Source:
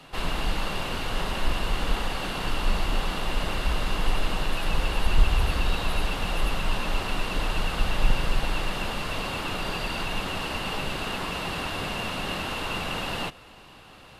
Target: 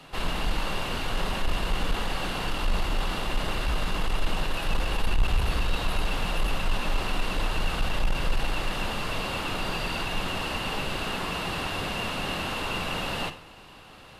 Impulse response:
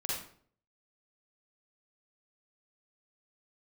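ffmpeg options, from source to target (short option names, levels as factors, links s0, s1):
-filter_complex "[0:a]asoftclip=type=tanh:threshold=0.141,asplit=2[s0][s1];[1:a]atrim=start_sample=2205[s2];[s1][s2]afir=irnorm=-1:irlink=0,volume=0.211[s3];[s0][s3]amix=inputs=2:normalize=0,volume=0.891"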